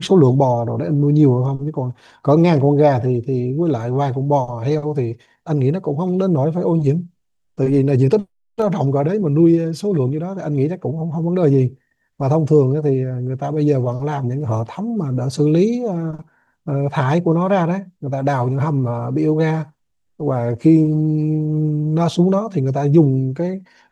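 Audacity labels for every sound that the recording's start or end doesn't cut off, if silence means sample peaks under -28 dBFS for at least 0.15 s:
2.250000	5.130000	sound
5.470000	7.030000	sound
7.590000	8.220000	sound
8.590000	11.680000	sound
12.200000	16.200000	sound
16.670000	17.820000	sound
18.030000	19.640000	sound
20.200000	23.580000	sound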